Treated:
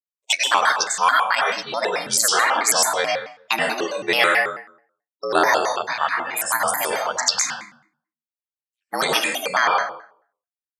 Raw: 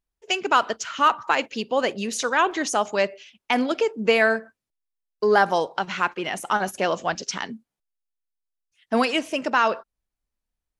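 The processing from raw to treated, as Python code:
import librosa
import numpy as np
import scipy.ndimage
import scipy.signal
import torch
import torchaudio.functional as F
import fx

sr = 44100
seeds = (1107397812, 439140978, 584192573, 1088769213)

y = x * np.sin(2.0 * np.pi * 51.0 * np.arange(len(x)) / sr)
y = fx.riaa(y, sr, side='recording')
y = fx.noise_reduce_blind(y, sr, reduce_db=28)
y = fx.low_shelf(y, sr, hz=400.0, db=-6.5)
y = fx.rev_plate(y, sr, seeds[0], rt60_s=0.55, hf_ratio=0.75, predelay_ms=80, drr_db=-1.0)
y = fx.vibrato_shape(y, sr, shape='square', rate_hz=4.6, depth_cents=250.0)
y = y * 10.0 ** (3.0 / 20.0)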